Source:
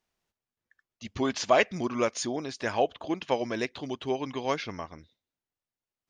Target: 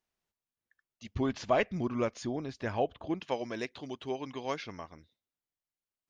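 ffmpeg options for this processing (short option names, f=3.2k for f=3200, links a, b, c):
-filter_complex "[0:a]asettb=1/sr,asplit=3[a][b][c];[a]atrim=end=1.154[d];[b]atrim=start=1.15:end=3.2,asetpts=PTS-STARTPTS,afade=t=in:d=0.004:c=qsin,afade=t=out:st=2.046:d=0.004:c=qsin,aemphasis=mode=reproduction:type=bsi[e];[c]atrim=start=3.196[f];[d][e]acrossfade=d=0.004:c1=hsin:c2=qsin[g];[g][f]acrossfade=d=0.004:c1=qsin:c2=hsin,volume=-6dB"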